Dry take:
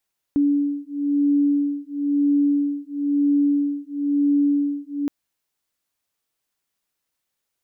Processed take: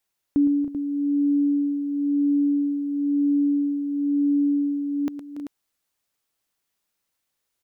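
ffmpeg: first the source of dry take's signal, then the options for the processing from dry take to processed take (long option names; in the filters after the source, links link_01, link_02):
-f lavfi -i "aevalsrc='0.0944*(sin(2*PI*286*t)+sin(2*PI*287*t))':duration=4.72:sample_rate=44100"
-af "aecho=1:1:113|285|319|388:0.266|0.211|0.211|0.335"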